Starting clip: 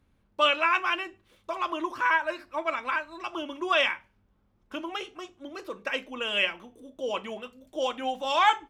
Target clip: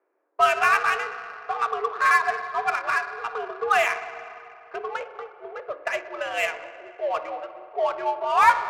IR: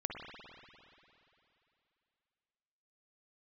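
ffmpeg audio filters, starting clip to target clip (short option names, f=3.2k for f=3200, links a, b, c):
-filter_complex "[0:a]highpass=f=310:t=q:w=0.5412,highpass=f=310:t=q:w=1.307,lowpass=f=2.3k:t=q:w=0.5176,lowpass=f=2.3k:t=q:w=0.7071,lowpass=f=2.3k:t=q:w=1.932,afreqshift=100,asplit=2[a][b];[1:a]atrim=start_sample=2205[c];[b][c]afir=irnorm=-1:irlink=0,volume=-5.5dB[d];[a][d]amix=inputs=2:normalize=0,adynamicsmooth=sensitivity=4.5:basefreq=1.7k,volume=2dB"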